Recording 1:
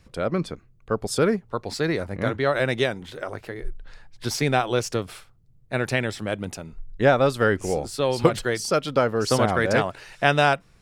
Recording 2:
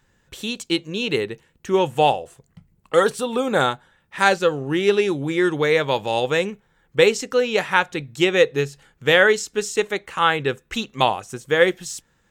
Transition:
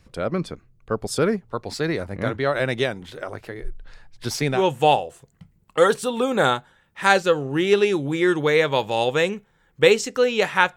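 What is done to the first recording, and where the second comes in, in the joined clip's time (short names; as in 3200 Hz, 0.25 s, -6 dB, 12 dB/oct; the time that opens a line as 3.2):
recording 1
4.57 switch to recording 2 from 1.73 s, crossfade 0.14 s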